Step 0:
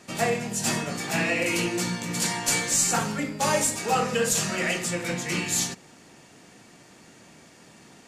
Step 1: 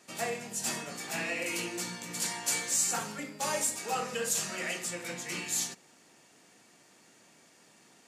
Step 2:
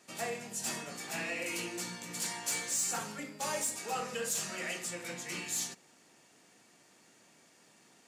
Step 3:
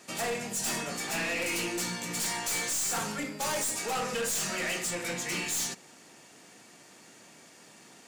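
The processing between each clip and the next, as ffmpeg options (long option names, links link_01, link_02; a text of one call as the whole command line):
ffmpeg -i in.wav -af "highpass=frequency=290:poles=1,highshelf=frequency=6700:gain=5.5,volume=-8.5dB" out.wav
ffmpeg -i in.wav -af "asoftclip=type=tanh:threshold=-22.5dB,volume=-2.5dB" out.wav
ffmpeg -i in.wav -af "aeval=exprs='0.0562*(cos(1*acos(clip(val(0)/0.0562,-1,1)))-cos(1*PI/2))+0.00501*(cos(4*acos(clip(val(0)/0.0562,-1,1)))-cos(4*PI/2))+0.02*(cos(5*acos(clip(val(0)/0.0562,-1,1)))-cos(5*PI/2))':channel_layout=same" out.wav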